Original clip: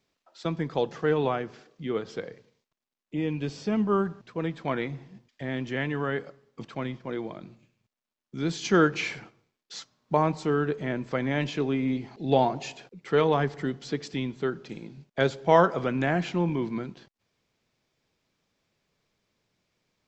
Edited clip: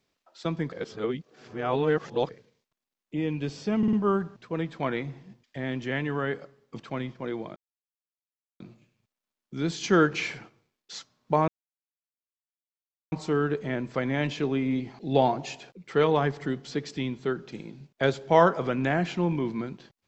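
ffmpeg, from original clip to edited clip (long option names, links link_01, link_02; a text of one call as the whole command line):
ffmpeg -i in.wav -filter_complex "[0:a]asplit=8[link_01][link_02][link_03][link_04][link_05][link_06][link_07][link_08];[link_01]atrim=end=0.722[link_09];[link_02]atrim=start=0.718:end=2.292,asetpts=PTS-STARTPTS,areverse[link_10];[link_03]atrim=start=2.288:end=3.832[link_11];[link_04]atrim=start=3.778:end=3.832[link_12];[link_05]atrim=start=3.778:end=3.832[link_13];[link_06]atrim=start=3.778:end=7.41,asetpts=PTS-STARTPTS,afade=type=out:start_time=3.628:duration=0.004:curve=hsin,apad=pad_dur=1.04[link_14];[link_07]atrim=start=7.41:end=10.29,asetpts=PTS-STARTPTS,afade=type=in:duration=0.004:curve=hsin,afade=type=out:start_time=2.876:duration=0.004:curve=hsin,apad=pad_dur=1.64[link_15];[link_08]atrim=start=10.29,asetpts=PTS-STARTPTS,afade=type=in:duration=0.004:curve=hsin[link_16];[link_09][link_10]acrossfade=duration=0.004:curve1=hsin:curve2=hsin[link_17];[link_17][link_11]acrossfade=duration=0.004:curve1=hsin:curve2=hsin[link_18];[link_18][link_12]acrossfade=duration=0.004:curve1=hsin:curve2=hsin[link_19];[link_19][link_13]acrossfade=duration=0.004:curve1=hsin:curve2=hsin[link_20];[link_14][link_15][link_16]concat=n=3:v=0:a=1[link_21];[link_20][link_21]acrossfade=duration=0.004:curve1=hsin:curve2=hsin" out.wav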